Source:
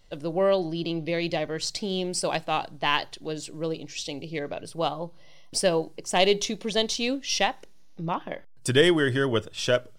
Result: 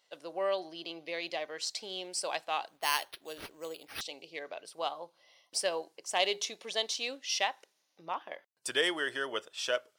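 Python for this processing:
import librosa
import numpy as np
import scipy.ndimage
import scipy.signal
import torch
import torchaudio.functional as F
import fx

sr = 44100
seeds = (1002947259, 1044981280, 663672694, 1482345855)

y = scipy.signal.sosfilt(scipy.signal.butter(2, 620.0, 'highpass', fs=sr, output='sos'), x)
y = fx.resample_bad(y, sr, factor=6, down='none', up='hold', at=(2.68, 4.01))
y = F.gain(torch.from_numpy(y), -5.5).numpy()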